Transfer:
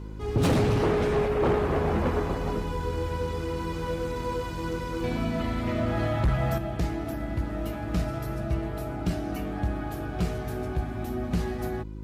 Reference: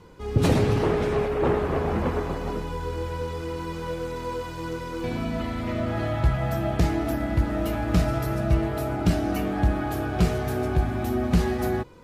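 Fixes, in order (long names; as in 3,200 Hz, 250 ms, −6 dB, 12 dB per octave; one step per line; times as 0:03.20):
clipped peaks rebuilt −18.5 dBFS
hum removal 52.3 Hz, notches 7
level correction +6.5 dB, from 0:06.58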